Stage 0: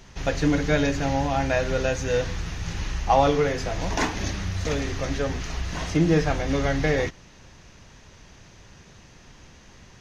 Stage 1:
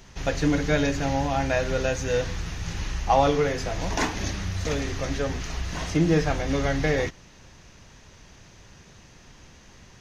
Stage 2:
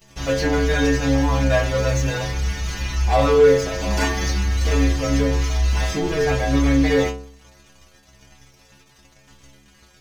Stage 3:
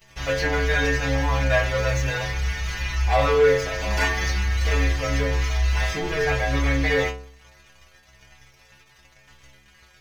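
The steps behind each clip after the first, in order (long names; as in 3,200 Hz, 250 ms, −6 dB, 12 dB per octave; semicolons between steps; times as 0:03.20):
high-shelf EQ 8,600 Hz +4.5 dB; level −1 dB
leveller curve on the samples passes 3; stiff-string resonator 65 Hz, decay 0.77 s, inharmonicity 0.008; level +7 dB
octave-band graphic EQ 250/2,000/8,000 Hz −9/+6/−4 dB; level −2 dB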